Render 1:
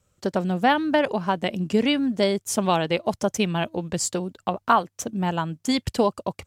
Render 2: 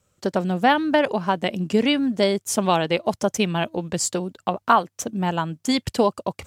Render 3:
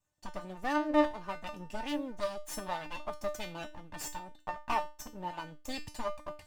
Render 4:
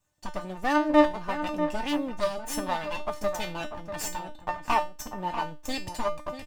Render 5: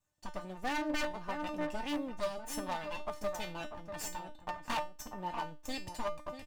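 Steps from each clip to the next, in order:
low-shelf EQ 72 Hz −8.5 dB; reversed playback; upward compression, threshold −39 dBFS; reversed playback; level +2 dB
lower of the sound and its delayed copy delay 1.1 ms; parametric band 800 Hz +3 dB 2.1 octaves; tuned comb filter 300 Hz, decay 0.29 s, harmonics all, mix 90%; level −1.5 dB
slap from a distant wall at 110 metres, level −9 dB; level +7 dB
wave folding −20 dBFS; level −7.5 dB

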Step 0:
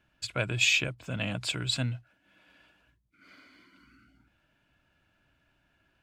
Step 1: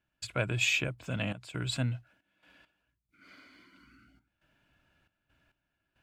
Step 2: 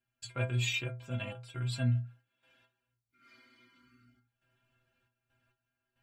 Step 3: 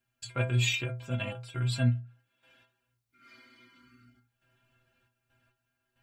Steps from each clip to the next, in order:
dynamic equaliser 4,600 Hz, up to −7 dB, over −42 dBFS, Q 0.76; gate pattern ".xxxxx.xxx.x." 68 BPM −12 dB
stiff-string resonator 120 Hz, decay 0.32 s, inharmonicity 0.008; level +5.5 dB
every ending faded ahead of time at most 150 dB per second; level +5 dB

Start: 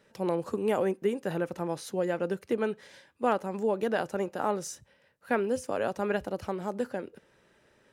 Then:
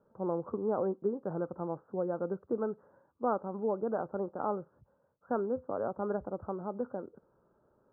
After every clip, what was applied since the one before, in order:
Butterworth low-pass 1,400 Hz 72 dB per octave
level −4 dB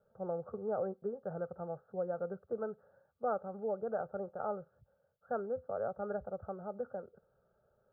phaser with its sweep stopped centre 1,500 Hz, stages 8
level −1 dB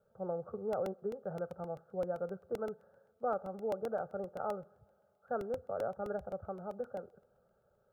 convolution reverb, pre-delay 3 ms, DRR 19.5 dB
regular buffer underruns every 0.13 s, samples 64, repeat, from 0:00.73

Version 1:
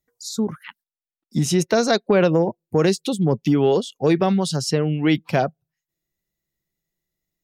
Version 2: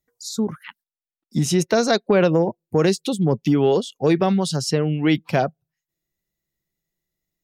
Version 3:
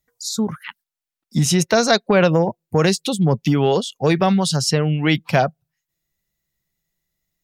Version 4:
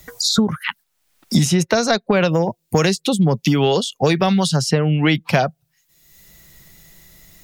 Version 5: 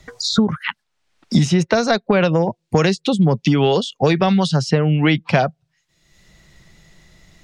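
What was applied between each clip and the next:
no processing that can be heard
parametric band 340 Hz −7.5 dB 1.3 octaves; level +5.5 dB
multiband upward and downward compressor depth 100%
high-frequency loss of the air 100 metres; level +1 dB

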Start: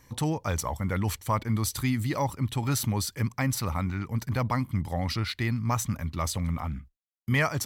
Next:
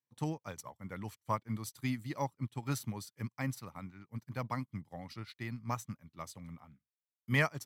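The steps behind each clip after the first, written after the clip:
high-pass filter 110 Hz 24 dB per octave
expander for the loud parts 2.5 to 1, over −46 dBFS
level −3 dB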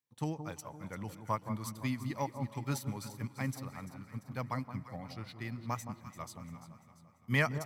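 delay that swaps between a low-pass and a high-pass 171 ms, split 1,100 Hz, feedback 68%, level −9 dB
on a send at −20 dB: convolution reverb RT60 4.4 s, pre-delay 108 ms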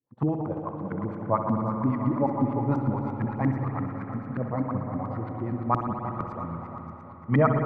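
echo with a time of its own for lows and highs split 1,400 Hz, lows 349 ms, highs 605 ms, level −9.5 dB
auto-filter low-pass saw up 8.7 Hz 240–1,500 Hz
spring reverb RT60 3.2 s, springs 60 ms, chirp 50 ms, DRR 3.5 dB
level +7.5 dB

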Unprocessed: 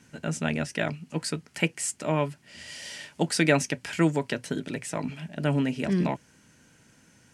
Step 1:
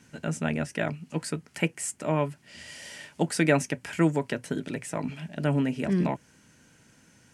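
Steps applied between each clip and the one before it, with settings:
dynamic equaliser 4,300 Hz, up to −7 dB, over −47 dBFS, Q 0.92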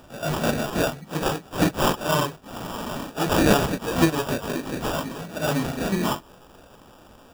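random phases in long frames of 100 ms
tilt shelving filter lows −7.5 dB, about 860 Hz
sample-rate reduction 2,100 Hz, jitter 0%
level +6.5 dB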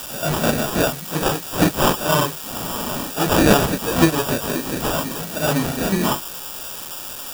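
spike at every zero crossing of −20 dBFS
level +4 dB

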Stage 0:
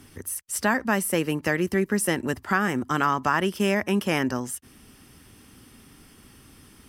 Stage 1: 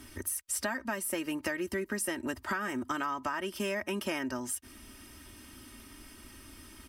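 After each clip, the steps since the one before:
parametric band 210 Hz −3.5 dB 2.9 octaves
comb filter 3.2 ms, depth 69%
downward compressor 6 to 1, threshold −31 dBFS, peak gain reduction 13 dB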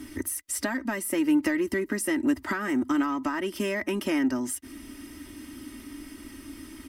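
hollow resonant body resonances 290/2,000 Hz, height 14 dB, ringing for 50 ms
in parallel at −8 dB: soft clipping −29 dBFS, distortion −9 dB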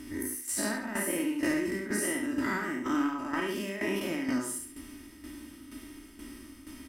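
every bin's largest magnitude spread in time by 120 ms
on a send: repeating echo 71 ms, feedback 36%, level −4 dB
on the sum: shaped tremolo saw down 2.1 Hz, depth 65%
level −7 dB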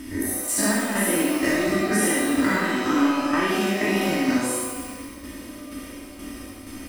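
reverb with rising layers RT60 1.2 s, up +12 semitones, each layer −8 dB, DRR 0.5 dB
level +6.5 dB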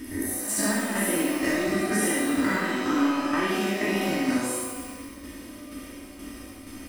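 echo ahead of the sound 177 ms −14.5 dB
level −3.5 dB

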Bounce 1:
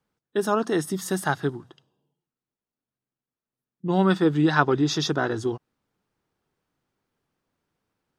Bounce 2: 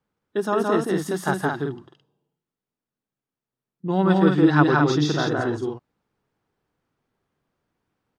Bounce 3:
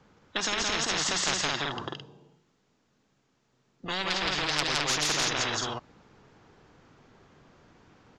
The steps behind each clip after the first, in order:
high-shelf EQ 4,100 Hz −8 dB; on a send: loudspeakers that aren't time-aligned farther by 58 metres −2 dB, 74 metres −5 dB
downsampling to 16,000 Hz; soft clipping −13.5 dBFS, distortion −13 dB; every bin compressed towards the loudest bin 10 to 1; level +3.5 dB

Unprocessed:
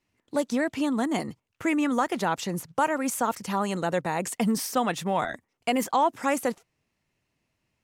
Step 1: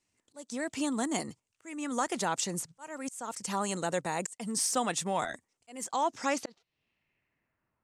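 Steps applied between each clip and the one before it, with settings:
bass and treble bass −2 dB, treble +6 dB
low-pass filter sweep 8,300 Hz → 1,200 Hz, 0:05.86–0:07.83
volume swells 440 ms
level −5 dB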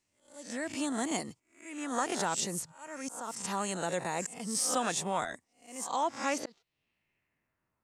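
peak hold with a rise ahead of every peak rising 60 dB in 0.39 s
level −2.5 dB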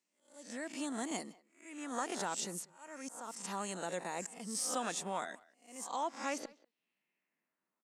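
linear-phase brick-wall high-pass 160 Hz
far-end echo of a speakerphone 190 ms, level −22 dB
level −6 dB

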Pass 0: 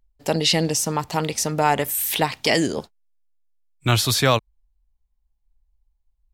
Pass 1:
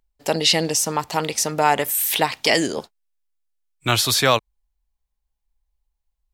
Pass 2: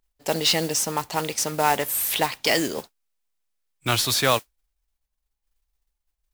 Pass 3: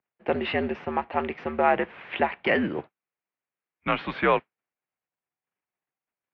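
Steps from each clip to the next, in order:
low-shelf EQ 220 Hz −10.5 dB; level +2.5 dB
noise that follows the level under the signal 12 dB; level −3.5 dB
single-sideband voice off tune −77 Hz 200–2,600 Hz

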